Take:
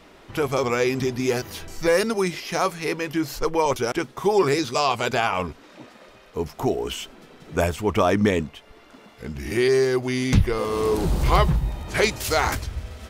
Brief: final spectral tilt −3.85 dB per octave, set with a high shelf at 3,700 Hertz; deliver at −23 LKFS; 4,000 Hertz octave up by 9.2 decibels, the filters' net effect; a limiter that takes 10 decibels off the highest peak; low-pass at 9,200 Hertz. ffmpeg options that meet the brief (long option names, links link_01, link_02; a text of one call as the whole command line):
ffmpeg -i in.wav -af "lowpass=9200,highshelf=frequency=3700:gain=6,equalizer=frequency=4000:width_type=o:gain=8,volume=0.5dB,alimiter=limit=-11dB:level=0:latency=1" out.wav